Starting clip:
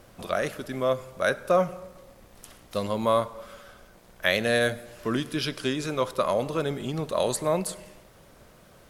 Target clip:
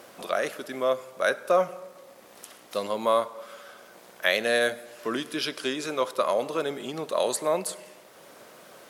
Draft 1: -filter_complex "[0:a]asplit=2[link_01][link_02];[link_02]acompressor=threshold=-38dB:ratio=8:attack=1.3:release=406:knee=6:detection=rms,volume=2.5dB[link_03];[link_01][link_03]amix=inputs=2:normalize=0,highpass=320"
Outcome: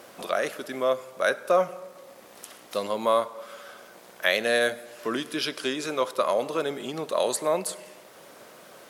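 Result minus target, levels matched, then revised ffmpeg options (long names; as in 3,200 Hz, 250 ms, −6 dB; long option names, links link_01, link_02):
downward compressor: peak gain reduction −6 dB
-filter_complex "[0:a]asplit=2[link_01][link_02];[link_02]acompressor=threshold=-45dB:ratio=8:attack=1.3:release=406:knee=6:detection=rms,volume=2.5dB[link_03];[link_01][link_03]amix=inputs=2:normalize=0,highpass=320"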